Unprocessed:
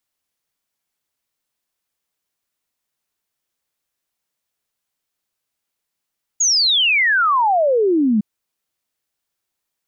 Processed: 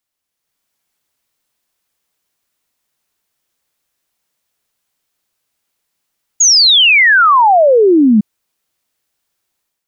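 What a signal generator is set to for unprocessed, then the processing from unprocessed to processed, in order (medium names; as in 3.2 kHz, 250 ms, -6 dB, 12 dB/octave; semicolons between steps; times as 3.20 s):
log sweep 6.9 kHz -> 200 Hz 1.81 s -12.5 dBFS
level rider gain up to 8 dB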